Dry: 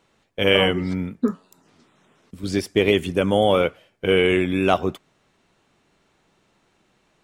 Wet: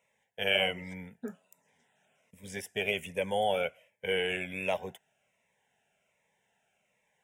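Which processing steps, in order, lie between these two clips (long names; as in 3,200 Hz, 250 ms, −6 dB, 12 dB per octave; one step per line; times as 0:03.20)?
high-pass filter 500 Hz 6 dB per octave
phaser with its sweep stopped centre 1,200 Hz, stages 6
phaser whose notches keep moving one way falling 1.3 Hz
level −3.5 dB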